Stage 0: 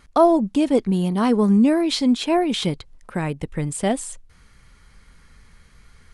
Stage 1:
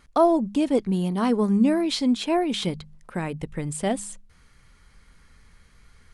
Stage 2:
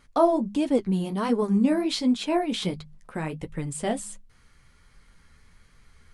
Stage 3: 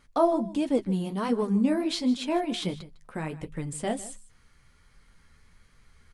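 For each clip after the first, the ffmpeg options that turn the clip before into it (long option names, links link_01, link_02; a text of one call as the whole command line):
ffmpeg -i in.wav -af "bandreject=frequency=51.04:width_type=h:width=4,bandreject=frequency=102.08:width_type=h:width=4,bandreject=frequency=153.12:width_type=h:width=4,bandreject=frequency=204.16:width_type=h:width=4,volume=-3.5dB" out.wav
ffmpeg -i in.wav -af "flanger=delay=6.6:depth=7.7:regen=-35:speed=1.4:shape=triangular,volume=2dB" out.wav
ffmpeg -i in.wav -af "aecho=1:1:154:0.133,volume=-2.5dB" out.wav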